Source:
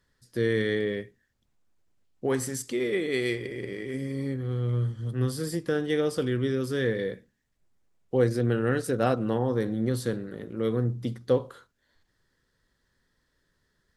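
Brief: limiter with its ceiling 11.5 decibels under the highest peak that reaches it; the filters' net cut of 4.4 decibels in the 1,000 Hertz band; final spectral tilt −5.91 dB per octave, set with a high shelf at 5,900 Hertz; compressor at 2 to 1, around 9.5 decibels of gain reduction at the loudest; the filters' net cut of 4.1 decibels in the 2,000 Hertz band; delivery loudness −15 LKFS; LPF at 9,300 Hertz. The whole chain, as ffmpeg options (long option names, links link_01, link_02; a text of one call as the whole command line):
ffmpeg -i in.wav -af "lowpass=9300,equalizer=frequency=1000:width_type=o:gain=-6,equalizer=frequency=2000:width_type=o:gain=-3.5,highshelf=frequency=5900:gain=5,acompressor=threshold=-36dB:ratio=2,volume=26dB,alimiter=limit=-5.5dB:level=0:latency=1" out.wav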